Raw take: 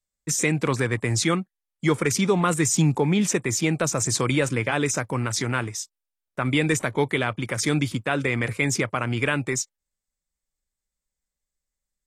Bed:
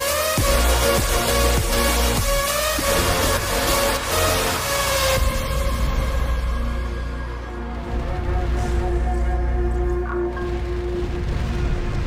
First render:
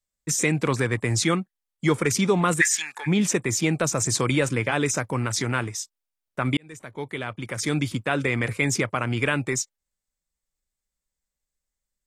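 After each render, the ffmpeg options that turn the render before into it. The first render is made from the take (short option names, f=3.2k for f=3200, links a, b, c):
-filter_complex "[0:a]asplit=3[a][b][c];[a]afade=t=out:st=2.6:d=0.02[d];[b]highpass=f=1.7k:t=q:w=15,afade=t=in:st=2.6:d=0.02,afade=t=out:st=3.06:d=0.02[e];[c]afade=t=in:st=3.06:d=0.02[f];[d][e][f]amix=inputs=3:normalize=0,asplit=2[g][h];[g]atrim=end=6.57,asetpts=PTS-STARTPTS,afade=t=out:st=6.566:d=0.004:c=hsin[i];[h]atrim=start=6.57,asetpts=PTS-STARTPTS,afade=t=in:d=1.47[j];[i][j]concat=n=2:v=0:a=1"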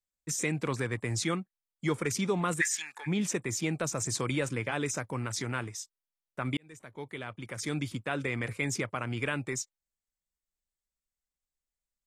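-af "volume=-8.5dB"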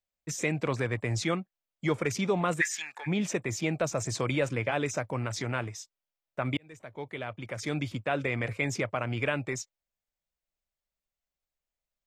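-af "equalizer=f=100:t=o:w=0.67:g=4,equalizer=f=630:t=o:w=0.67:g=8,equalizer=f=2.5k:t=o:w=0.67:g=3,equalizer=f=10k:t=o:w=0.67:g=-11"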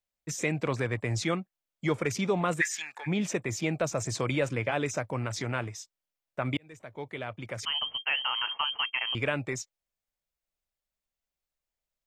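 -filter_complex "[0:a]asettb=1/sr,asplit=3[a][b][c];[a]atrim=end=7.654[d];[b]atrim=start=7.65:end=9.15,asetpts=PTS-STARTPTS,afade=t=in:d=0.004:c=qsin,afade=t=out:st=1.496:d=0.004:c=qsin,lowpass=f=2.8k:t=q:w=0.5098,lowpass=f=2.8k:t=q:w=0.6013,lowpass=f=2.8k:t=q:w=0.9,lowpass=f=2.8k:t=q:w=2.563,afreqshift=-3300[e];[c]atrim=start=9.146[f];[d][e]acrossfade=d=0.004:c1=hsin:c2=qsin[g];[g][f]acrossfade=d=0.004:c1=qsin:c2=hsin"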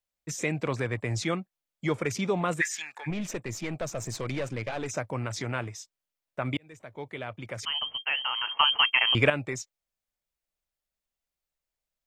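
-filter_complex "[0:a]asettb=1/sr,asplit=3[a][b][c];[a]atrim=end=3.104[d];[b]atrim=start=3.1:end=4.89,asetpts=PTS-STARTPTS,afade=t=in:d=0.004:c=qsin,afade=t=out:st=1.786:d=0.004:c=qsin,aeval=exprs='(tanh(20*val(0)+0.5)-tanh(0.5))/20':c=same[e];[c]atrim=start=4.886[f];[d][e]acrossfade=d=0.004:c1=hsin:c2=qsin[g];[g][f]acrossfade=d=0.004:c1=qsin:c2=hsin,asplit=3[h][i][j];[h]atrim=end=8.572[k];[i]atrim=start=8.568:end=9.302,asetpts=PTS-STARTPTS,volume=8dB[l];[j]atrim=start=9.298[m];[k][l]acrossfade=d=0.004:c1=hsin:c2=hsin[n];[n][m]acrossfade=d=0.004:c1=hsin:c2=hsin"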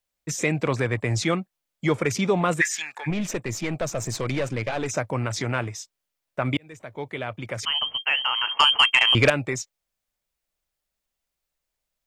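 -af "aeval=exprs='0.531*(cos(1*acos(clip(val(0)/0.531,-1,1)))-cos(1*PI/2))+0.0106*(cos(4*acos(clip(val(0)/0.531,-1,1)))-cos(4*PI/2))+0.168*(cos(5*acos(clip(val(0)/0.531,-1,1)))-cos(5*PI/2))+0.0075*(cos(6*acos(clip(val(0)/0.531,-1,1)))-cos(6*PI/2))+0.0473*(cos(7*acos(clip(val(0)/0.531,-1,1)))-cos(7*PI/2))':c=same"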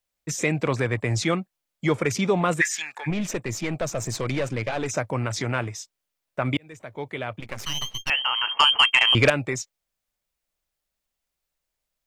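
-filter_complex "[0:a]asettb=1/sr,asplit=3[a][b][c];[a]atrim=end=7.404[d];[b]atrim=start=7.4:end=8.1,asetpts=PTS-STARTPTS,afade=t=in:d=0.004:c=qsin,afade=t=out:st=0.696:d=0.004:c=qsin,aeval=exprs='max(val(0),0)':c=same[e];[c]atrim=start=8.096[f];[d][e]acrossfade=d=0.004:c1=hsin:c2=qsin[g];[g][f]acrossfade=d=0.004:c1=qsin:c2=hsin"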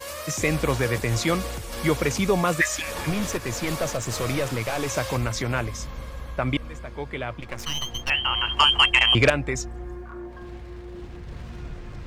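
-filter_complex "[1:a]volume=-14dB[a];[0:a][a]amix=inputs=2:normalize=0"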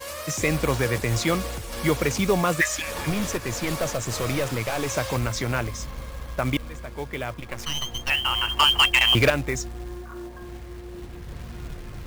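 -af "acrusher=bits=4:mode=log:mix=0:aa=0.000001,volume=11.5dB,asoftclip=hard,volume=-11.5dB"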